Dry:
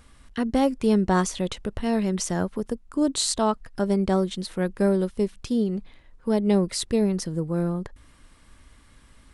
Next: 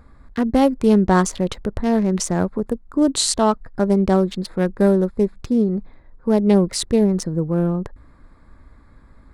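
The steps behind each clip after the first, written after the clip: local Wiener filter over 15 samples; trim +6 dB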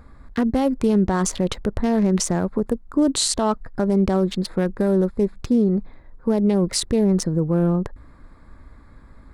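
peak limiter -12.5 dBFS, peak gain reduction 9.5 dB; trim +2 dB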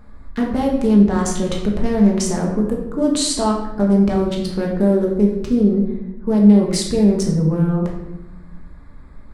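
simulated room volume 320 m³, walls mixed, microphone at 1.4 m; trim -2.5 dB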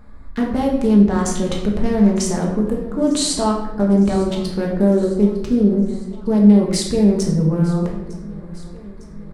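feedback delay 905 ms, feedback 58%, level -20 dB

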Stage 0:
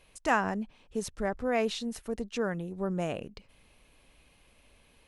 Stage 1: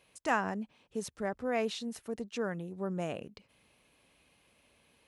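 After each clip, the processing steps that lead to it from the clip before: high-pass 100 Hz 12 dB/octave; trim -3.5 dB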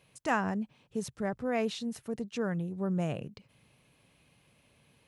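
peaking EQ 130 Hz +12.5 dB 1 oct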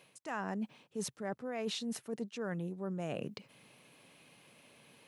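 high-pass 210 Hz 12 dB/octave; reverse; compression 10:1, threshold -41 dBFS, peak gain reduction 18 dB; reverse; trim +6 dB

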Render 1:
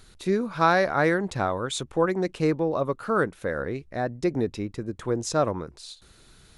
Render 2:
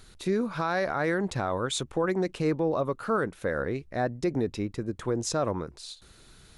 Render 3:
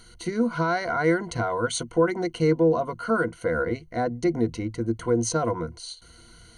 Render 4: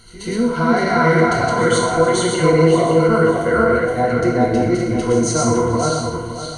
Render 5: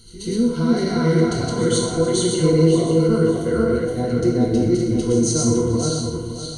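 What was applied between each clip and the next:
peak limiter -18 dBFS, peak gain reduction 11 dB
rippled EQ curve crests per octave 1.9, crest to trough 17 dB
backward echo that repeats 281 ms, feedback 54%, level 0 dB; pre-echo 130 ms -15 dB; gated-style reverb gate 270 ms falling, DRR -1.5 dB; trim +2.5 dB
high-order bell 1.2 kHz -13 dB 2.4 oct

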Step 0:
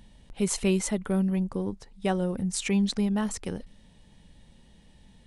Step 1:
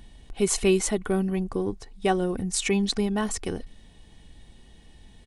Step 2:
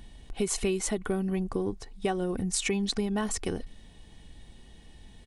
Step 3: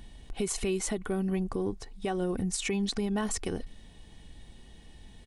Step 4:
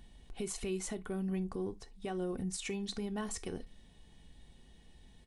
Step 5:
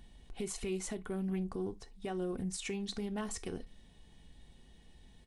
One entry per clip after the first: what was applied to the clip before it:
comb 2.7 ms, depth 43%; trim +3.5 dB
compression 6:1, threshold -25 dBFS, peak gain reduction 8.5 dB
peak limiter -21 dBFS, peak gain reduction 9 dB
gated-style reverb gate 90 ms falling, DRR 11.5 dB; trim -8 dB
loudspeaker Doppler distortion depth 0.12 ms

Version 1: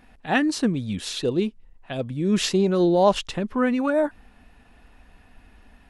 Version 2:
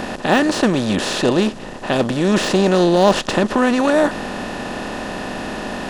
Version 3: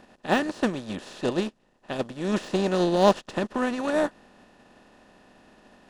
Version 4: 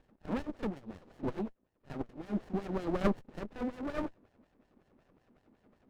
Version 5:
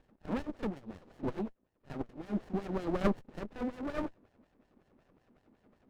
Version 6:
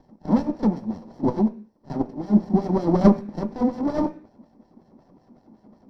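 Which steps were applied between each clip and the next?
spectral levelling over time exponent 0.4; de-esser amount 50%; trim +2 dB
upward expansion 2.5:1, over -30 dBFS; trim -4 dB
LFO band-pass sine 5.4 Hz 230–2400 Hz; pre-echo 38 ms -16 dB; sliding maximum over 33 samples; trim -2.5 dB
no audible change
reverberation RT60 0.40 s, pre-delay 3 ms, DRR 8.5 dB

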